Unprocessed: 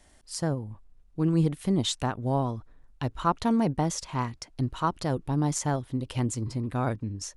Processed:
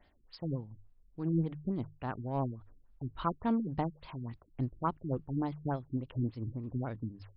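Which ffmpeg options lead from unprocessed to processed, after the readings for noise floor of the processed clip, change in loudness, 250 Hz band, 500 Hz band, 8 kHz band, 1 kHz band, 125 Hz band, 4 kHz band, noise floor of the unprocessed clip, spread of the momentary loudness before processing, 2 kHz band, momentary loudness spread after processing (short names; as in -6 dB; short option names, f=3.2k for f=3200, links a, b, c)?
-66 dBFS, -7.5 dB, -7.0 dB, -8.0 dB, under -40 dB, -8.0 dB, -7.5 dB, -19.5 dB, -57 dBFS, 10 LU, -10.5 dB, 12 LU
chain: -filter_complex "[0:a]bandreject=f=50:t=h:w=6,bandreject=f=100:t=h:w=6,bandreject=f=150:t=h:w=6,asplit=2[a][b];[b]asoftclip=type=tanh:threshold=-23dB,volume=-5dB[c];[a][c]amix=inputs=2:normalize=0,tremolo=f=3.7:d=0.53,afftfilt=real='re*lt(b*sr/1024,370*pow(5400/370,0.5+0.5*sin(2*PI*3.5*pts/sr)))':imag='im*lt(b*sr/1024,370*pow(5400/370,0.5+0.5*sin(2*PI*3.5*pts/sr)))':win_size=1024:overlap=0.75,volume=-7.5dB"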